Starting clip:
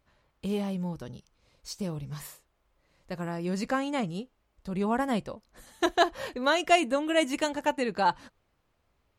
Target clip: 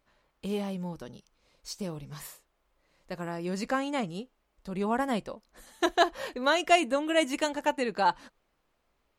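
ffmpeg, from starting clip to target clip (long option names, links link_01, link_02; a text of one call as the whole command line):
ffmpeg -i in.wav -af "equalizer=frequency=93:width_type=o:width=1.1:gain=-13" out.wav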